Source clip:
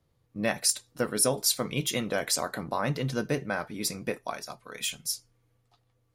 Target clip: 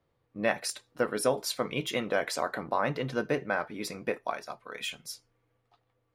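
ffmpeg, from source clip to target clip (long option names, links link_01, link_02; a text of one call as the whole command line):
ffmpeg -i in.wav -af "bass=frequency=250:gain=-9,treble=frequency=4000:gain=-14,volume=2dB" out.wav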